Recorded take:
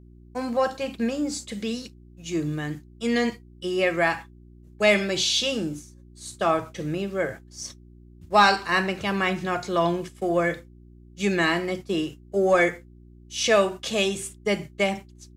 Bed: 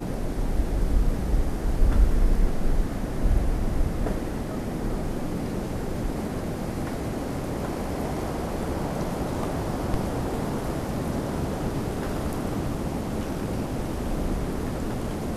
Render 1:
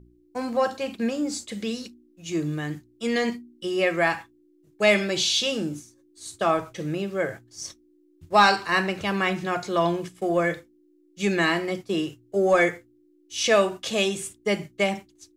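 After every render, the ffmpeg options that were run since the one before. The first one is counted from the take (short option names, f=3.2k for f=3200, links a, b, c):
-af "bandreject=f=60:t=h:w=4,bandreject=f=120:t=h:w=4,bandreject=f=180:t=h:w=4,bandreject=f=240:t=h:w=4"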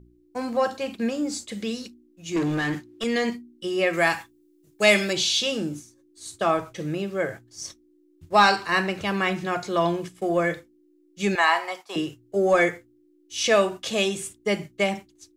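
-filter_complex "[0:a]asettb=1/sr,asplit=3[a][b][c];[a]atrim=end=2.364[d];[b]atrim=start=2.36:end=3.04,asetpts=PTS-STARTPTS,afade=t=in:d=0.004:c=qsin,afade=t=out:st=0.676:d=0.004:c=qsin,asplit=2[e][f];[f]highpass=f=720:p=1,volume=23dB,asoftclip=type=tanh:threshold=-16.5dB[g];[e][g]amix=inputs=2:normalize=0,lowpass=f=2.4k:p=1,volume=-6dB[h];[c]atrim=start=3.036[i];[d][h]acrossfade=d=0.004:c1=hsin:c2=qsin[j];[j][i]acrossfade=d=0.004:c1=qsin:c2=hsin,asettb=1/sr,asplit=3[k][l][m];[k]atrim=end=3.934[n];[l]atrim=start=3.93:end=5.13,asetpts=PTS-STARTPTS,afade=t=in:d=0.004:c=qsin,afade=t=out:st=1.196:d=0.004:c=qsin,highshelf=f=3.9k:g=10.5[o];[m]atrim=start=5.126[p];[n][o]acrossfade=d=0.004:c1=hsin:c2=qsin[q];[q][p]acrossfade=d=0.004:c1=qsin:c2=hsin,asettb=1/sr,asplit=3[r][s][t];[r]atrim=end=11.354[u];[s]atrim=start=11.35:end=11.96,asetpts=PTS-STARTPTS,afade=t=in:d=0.004:c=qsin,afade=t=out:st=0.606:d=0.004:c=qsin,highpass=f=870:t=q:w=3.7[v];[t]atrim=start=11.956[w];[u][v]acrossfade=d=0.004:c1=hsin:c2=qsin[x];[x][w]acrossfade=d=0.004:c1=qsin:c2=hsin"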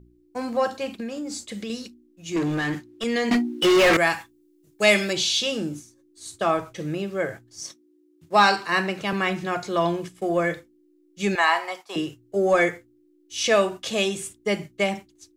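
-filter_complex "[0:a]asettb=1/sr,asplit=3[a][b][c];[a]atrim=end=1.004[d];[b]atrim=start=1:end=1.7,asetpts=PTS-STARTPTS,afade=t=in:d=0.004:c=qsin,afade=t=out:st=0.696:d=0.004:c=qsin,acompressor=threshold=-28dB:ratio=6:attack=3.2:release=140:knee=1:detection=peak[e];[c]atrim=start=1.696[f];[d][e]acrossfade=d=0.004:c1=hsin:c2=qsin[g];[g][f]acrossfade=d=0.004:c1=qsin:c2=hsin,asettb=1/sr,asplit=3[h][i][j];[h]atrim=end=3.314[k];[i]atrim=start=3.31:end=3.97,asetpts=PTS-STARTPTS,afade=t=in:d=0.004:c=qsin,afade=t=out:st=0.656:d=0.004:c=qsin,asplit=2[l][m];[m]highpass=f=720:p=1,volume=37dB,asoftclip=type=tanh:threshold=-9.5dB[n];[l][n]amix=inputs=2:normalize=0,lowpass=f=2.6k:p=1,volume=-6dB[o];[j]atrim=start=3.966[p];[k][o]acrossfade=d=0.004:c1=hsin:c2=qsin[q];[q][p]acrossfade=d=0.004:c1=qsin:c2=hsin,asettb=1/sr,asplit=3[r][s][t];[r]atrim=end=7.614[u];[s]atrim=start=7.61:end=9.13,asetpts=PTS-STARTPTS,afade=t=in:d=0.004:c=qsin,afade=t=out:st=1.516:d=0.004:c=qsin,highpass=f=130:w=0.5412,highpass=f=130:w=1.3066[v];[t]atrim=start=9.126[w];[u][v]acrossfade=d=0.004:c1=hsin:c2=qsin[x];[x][w]acrossfade=d=0.004:c1=qsin:c2=hsin"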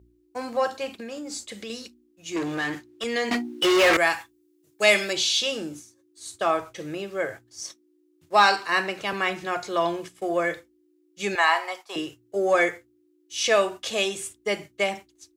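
-af "highpass=53,equalizer=f=170:w=1:g=-10.5"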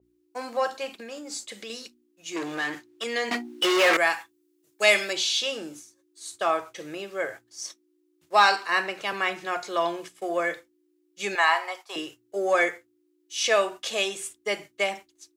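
-af "highpass=f=430:p=1,adynamicequalizer=threshold=0.02:dfrequency=2700:dqfactor=0.7:tfrequency=2700:tqfactor=0.7:attack=5:release=100:ratio=0.375:range=2:mode=cutabove:tftype=highshelf"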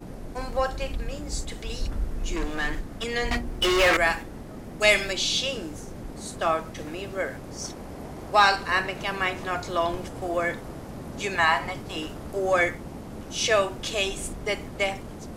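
-filter_complex "[1:a]volume=-9.5dB[a];[0:a][a]amix=inputs=2:normalize=0"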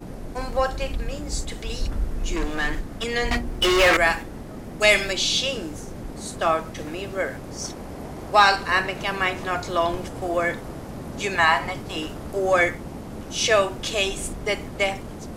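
-af "volume=3dB,alimiter=limit=-3dB:level=0:latency=1"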